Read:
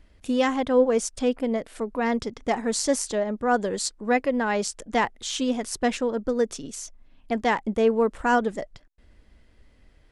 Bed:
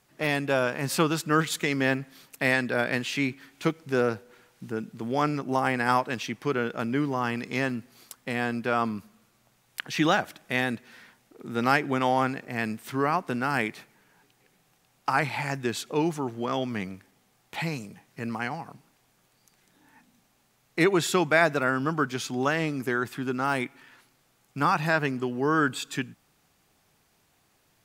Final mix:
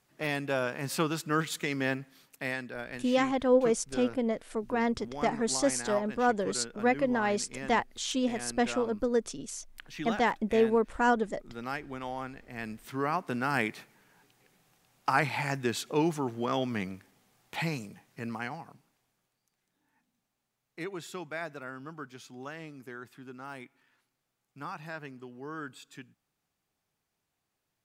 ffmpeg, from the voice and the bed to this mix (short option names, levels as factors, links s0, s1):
-filter_complex "[0:a]adelay=2750,volume=0.631[s0];[1:a]volume=2.11,afade=t=out:st=1.87:d=0.88:silence=0.398107,afade=t=in:st=12.32:d=1.41:silence=0.251189,afade=t=out:st=17.65:d=1.77:silence=0.177828[s1];[s0][s1]amix=inputs=2:normalize=0"